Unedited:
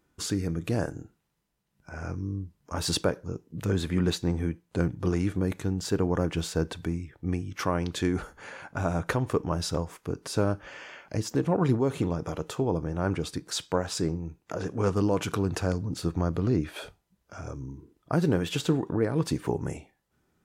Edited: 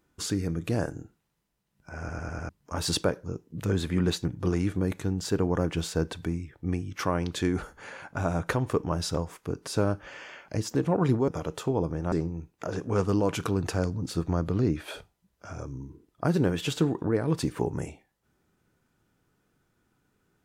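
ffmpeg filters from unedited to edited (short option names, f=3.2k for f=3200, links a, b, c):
-filter_complex "[0:a]asplit=9[a][b][c][d][e][f][g][h][i];[a]atrim=end=2.092[j];[b]atrim=start=1.988:end=2.092[k];[c]atrim=start=1.988:end=2.092[l];[d]atrim=start=1.988:end=2.092[m];[e]atrim=start=1.988:end=2.092[n];[f]atrim=start=2.488:end=4.252[o];[g]atrim=start=4.848:end=11.882[p];[h]atrim=start=12.198:end=13.042[q];[i]atrim=start=13.998[r];[j][k]acrossfade=d=0.004:c1=hsin:c2=hsin[s];[s][l]acrossfade=d=0.004:c1=hsin:c2=hsin[t];[t][m]acrossfade=d=0.004:c1=hsin:c2=hsin[u];[u][n]acrossfade=d=0.004:c1=hsin:c2=hsin[v];[v][o]acrossfade=d=0.004:c1=hsin:c2=hsin[w];[w][p]acrossfade=d=0.004:c1=hsin:c2=hsin[x];[x][q]acrossfade=d=0.004:c1=hsin:c2=hsin[y];[y][r]acrossfade=d=0.004:c1=hsin:c2=hsin"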